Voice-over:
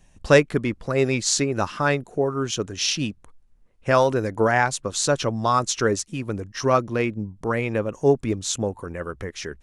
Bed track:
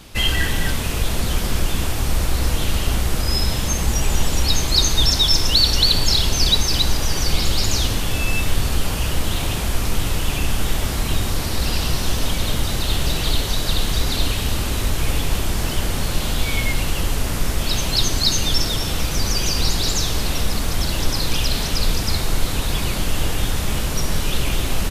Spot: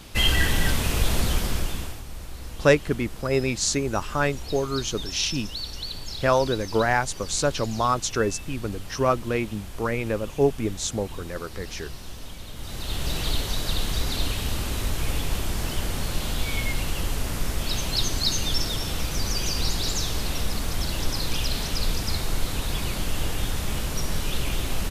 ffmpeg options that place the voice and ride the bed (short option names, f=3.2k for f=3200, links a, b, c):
-filter_complex "[0:a]adelay=2350,volume=-2.5dB[a];[1:a]volume=10.5dB,afade=t=out:st=1.18:d=0.85:silence=0.149624,afade=t=in:st=12.54:d=0.64:silence=0.251189[b];[a][b]amix=inputs=2:normalize=0"